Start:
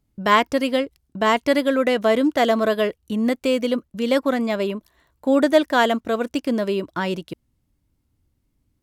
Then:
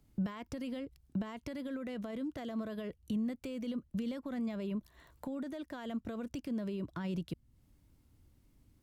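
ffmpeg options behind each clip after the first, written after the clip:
ffmpeg -i in.wav -filter_complex "[0:a]acompressor=threshold=-23dB:ratio=6,alimiter=level_in=0.5dB:limit=-24dB:level=0:latency=1:release=23,volume=-0.5dB,acrossover=split=190[link_01][link_02];[link_02]acompressor=threshold=-51dB:ratio=3[link_03];[link_01][link_03]amix=inputs=2:normalize=0,volume=3dB" out.wav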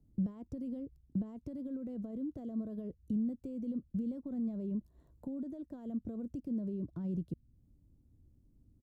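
ffmpeg -i in.wav -af "firequalizer=gain_entry='entry(230,0);entry(940,-16);entry(2000,-28);entry(6600,-17)':delay=0.05:min_phase=1,volume=1dB" out.wav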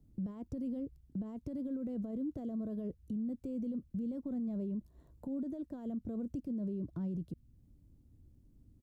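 ffmpeg -i in.wav -af "alimiter=level_in=11dB:limit=-24dB:level=0:latency=1:release=46,volume=-11dB,volume=3dB" out.wav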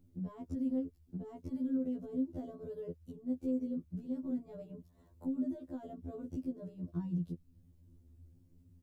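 ffmpeg -i in.wav -af "afftfilt=real='re*2*eq(mod(b,4),0)':imag='im*2*eq(mod(b,4),0)':win_size=2048:overlap=0.75,volume=3.5dB" out.wav

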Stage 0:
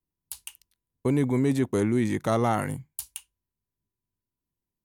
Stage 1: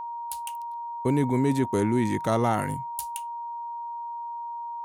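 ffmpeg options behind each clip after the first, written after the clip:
ffmpeg -i in.wav -af "aeval=exprs='val(0)+0.0251*sin(2*PI*940*n/s)':channel_layout=same" out.wav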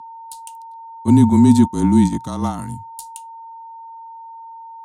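ffmpeg -i in.wav -af "afreqshift=-29,equalizer=frequency=125:width_type=o:width=1:gain=9,equalizer=frequency=250:width_type=o:width=1:gain=12,equalizer=frequency=500:width_type=o:width=1:gain=-9,equalizer=frequency=1000:width_type=o:width=1:gain=9,equalizer=frequency=2000:width_type=o:width=1:gain=-8,equalizer=frequency=4000:width_type=o:width=1:gain=9,equalizer=frequency=8000:width_type=o:width=1:gain=11,agate=range=-10dB:threshold=-15dB:ratio=16:detection=peak,volume=2dB" out.wav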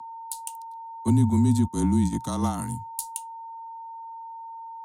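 ffmpeg -i in.wav -filter_complex "[0:a]acrossover=split=130[link_01][link_02];[link_02]acompressor=threshold=-19dB:ratio=10[link_03];[link_01][link_03]amix=inputs=2:normalize=0,acrossover=split=230|730|1900[link_04][link_05][link_06][link_07];[link_07]crystalizer=i=1:c=0[link_08];[link_04][link_05][link_06][link_08]amix=inputs=4:normalize=0,volume=-2.5dB" out.wav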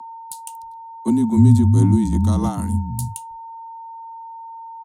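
ffmpeg -i in.wav -filter_complex "[0:a]lowshelf=frequency=460:gain=10.5,areverse,acompressor=mode=upward:threshold=-33dB:ratio=2.5,areverse,acrossover=split=190[link_01][link_02];[link_01]adelay=300[link_03];[link_03][link_02]amix=inputs=2:normalize=0" out.wav

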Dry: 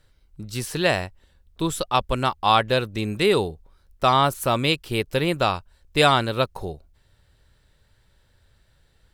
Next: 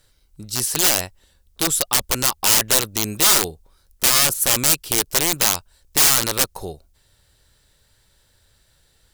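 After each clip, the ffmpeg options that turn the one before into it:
ffmpeg -i in.wav -af "aeval=exprs='(tanh(2.24*val(0)+0.2)-tanh(0.2))/2.24':channel_layout=same,aeval=exprs='(mod(7.08*val(0)+1,2)-1)/7.08':channel_layout=same,bass=frequency=250:gain=-3,treble=frequency=4000:gain=11,volume=1.5dB" out.wav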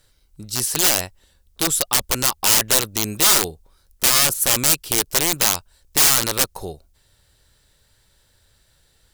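ffmpeg -i in.wav -af anull out.wav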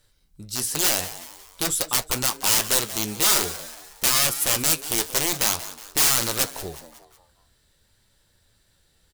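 ffmpeg -i in.wav -filter_complex "[0:a]flanger=delay=8.6:depth=6.4:regen=-54:speed=0.48:shape=sinusoidal,asplit=5[link_01][link_02][link_03][link_04][link_05];[link_02]adelay=183,afreqshift=150,volume=-14.5dB[link_06];[link_03]adelay=366,afreqshift=300,volume=-21.2dB[link_07];[link_04]adelay=549,afreqshift=450,volume=-28dB[link_08];[link_05]adelay=732,afreqshift=600,volume=-34.7dB[link_09];[link_01][link_06][link_07][link_08][link_09]amix=inputs=5:normalize=0" out.wav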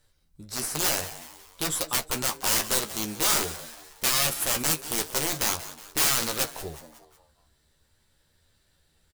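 ffmpeg -i in.wav -filter_complex "[0:a]asplit=2[link_01][link_02];[link_02]acrusher=samples=8:mix=1:aa=0.000001:lfo=1:lforange=8:lforate=0.44,volume=-11dB[link_03];[link_01][link_03]amix=inputs=2:normalize=0,asplit=2[link_04][link_05];[link_05]adelay=13,volume=-7.5dB[link_06];[link_04][link_06]amix=inputs=2:normalize=0,volume=-5.5dB" out.wav

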